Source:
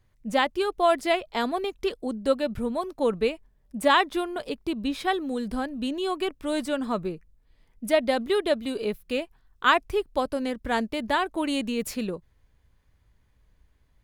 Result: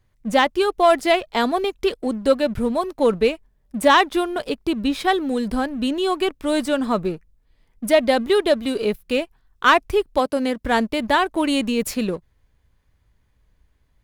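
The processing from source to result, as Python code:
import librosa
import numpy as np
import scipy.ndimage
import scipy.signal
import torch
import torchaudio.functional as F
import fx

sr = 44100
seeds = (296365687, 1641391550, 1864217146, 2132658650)

y = fx.highpass(x, sr, hz=fx.line((10.18, 180.0), (10.63, 70.0)), slope=12, at=(10.18, 10.63), fade=0.02)
y = fx.leveller(y, sr, passes=1)
y = F.gain(torch.from_numpy(y), 3.0).numpy()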